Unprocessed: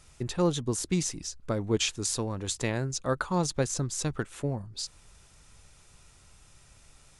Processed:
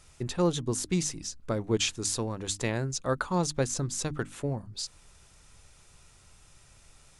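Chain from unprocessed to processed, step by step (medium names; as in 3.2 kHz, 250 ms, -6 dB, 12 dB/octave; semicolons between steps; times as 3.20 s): hum notches 50/100/150/200/250/300 Hz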